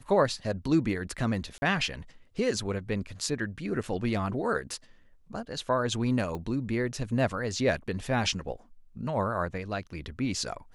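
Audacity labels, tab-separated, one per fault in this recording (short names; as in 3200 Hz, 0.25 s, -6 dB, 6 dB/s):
1.580000	1.620000	gap 40 ms
3.830000	3.840000	gap 5.1 ms
6.350000	6.350000	pop -24 dBFS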